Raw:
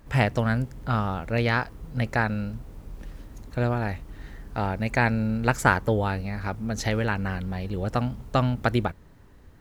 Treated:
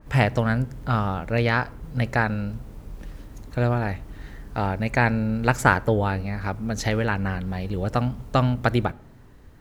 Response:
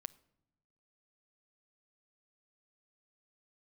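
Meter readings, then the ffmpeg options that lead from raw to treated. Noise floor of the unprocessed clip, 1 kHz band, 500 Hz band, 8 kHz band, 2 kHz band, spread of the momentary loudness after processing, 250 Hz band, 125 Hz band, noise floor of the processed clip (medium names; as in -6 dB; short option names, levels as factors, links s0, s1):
-51 dBFS, +2.0 dB, +2.5 dB, +1.0 dB, +2.0 dB, 15 LU, +2.0 dB, +2.5 dB, -48 dBFS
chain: -filter_complex "[0:a]asplit=2[s0][s1];[1:a]atrim=start_sample=2205[s2];[s1][s2]afir=irnorm=-1:irlink=0,volume=3.35[s3];[s0][s3]amix=inputs=2:normalize=0,adynamicequalizer=threshold=0.0282:dfrequency=2800:dqfactor=0.7:tfrequency=2800:tqfactor=0.7:attack=5:release=100:ratio=0.375:range=2:mode=cutabove:tftype=highshelf,volume=0.422"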